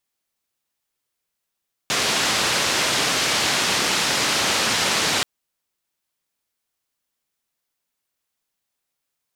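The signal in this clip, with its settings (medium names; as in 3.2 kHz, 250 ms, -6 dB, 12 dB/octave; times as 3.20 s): noise band 110–5400 Hz, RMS -21 dBFS 3.33 s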